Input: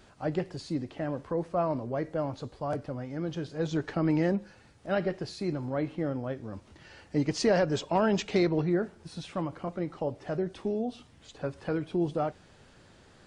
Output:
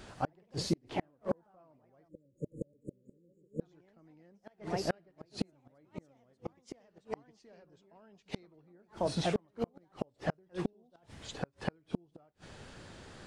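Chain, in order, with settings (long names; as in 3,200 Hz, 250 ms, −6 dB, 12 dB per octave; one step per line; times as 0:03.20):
delay with pitch and tempo change per echo 86 ms, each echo +2 semitones, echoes 3, each echo −6 dB
gate with flip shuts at −24 dBFS, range −40 dB
time-frequency box erased 0:02.08–0:03.61, 590–6,600 Hz
level +5.5 dB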